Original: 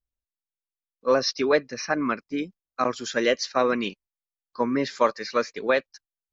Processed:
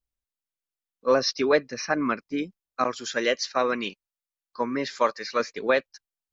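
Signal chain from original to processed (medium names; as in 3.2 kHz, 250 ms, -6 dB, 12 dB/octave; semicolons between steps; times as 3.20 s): 2.84–5.40 s: bass shelf 450 Hz -6 dB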